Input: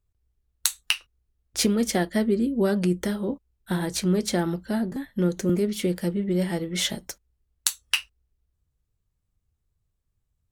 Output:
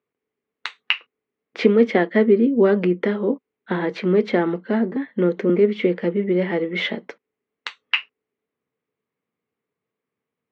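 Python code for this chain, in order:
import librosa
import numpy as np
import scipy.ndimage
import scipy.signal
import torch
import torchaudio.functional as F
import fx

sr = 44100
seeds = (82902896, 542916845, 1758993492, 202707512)

y = fx.cabinet(x, sr, low_hz=200.0, low_slope=24, high_hz=3000.0, hz=(250.0, 450.0, 1100.0, 2100.0), db=(4, 10, 4, 7))
y = y * 10.0 ** (4.0 / 20.0)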